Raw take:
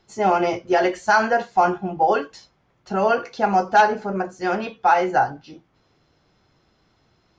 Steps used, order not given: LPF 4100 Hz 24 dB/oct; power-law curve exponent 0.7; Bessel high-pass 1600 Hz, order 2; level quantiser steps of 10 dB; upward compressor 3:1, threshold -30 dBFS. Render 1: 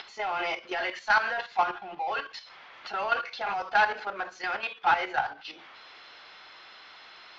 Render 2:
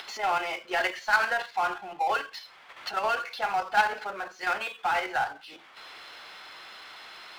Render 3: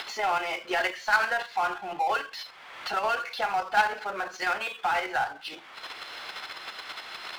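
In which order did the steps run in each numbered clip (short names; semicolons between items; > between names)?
Bessel high-pass > power-law curve > upward compressor > LPF > level quantiser; LPF > upward compressor > Bessel high-pass > level quantiser > power-law curve; Bessel high-pass > level quantiser > upward compressor > LPF > power-law curve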